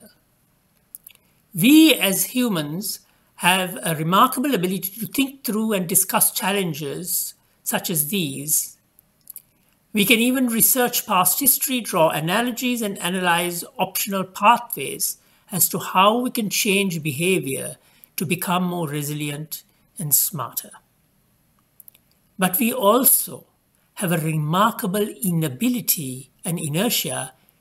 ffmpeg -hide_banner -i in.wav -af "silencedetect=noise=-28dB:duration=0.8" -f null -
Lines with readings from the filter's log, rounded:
silence_start: 0.00
silence_end: 0.95 | silence_duration: 0.95
silence_start: 20.63
silence_end: 21.80 | silence_duration: 1.18